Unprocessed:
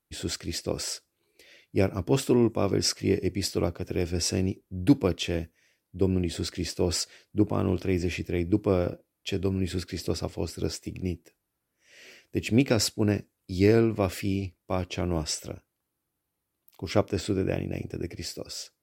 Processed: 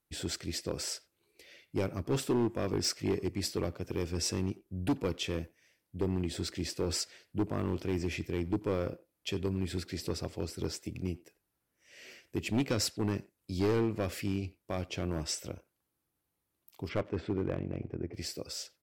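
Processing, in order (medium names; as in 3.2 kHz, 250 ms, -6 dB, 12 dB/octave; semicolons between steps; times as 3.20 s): 16.88–18.13 s: low-pass 2.5 kHz -> 1.4 kHz 12 dB/octave; in parallel at -2.5 dB: compression 6:1, threshold -36 dBFS, peak gain reduction 20.5 dB; on the sum: hard clipper -17.5 dBFS, distortion -11 dB; speakerphone echo 90 ms, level -19 dB; trim -6.5 dB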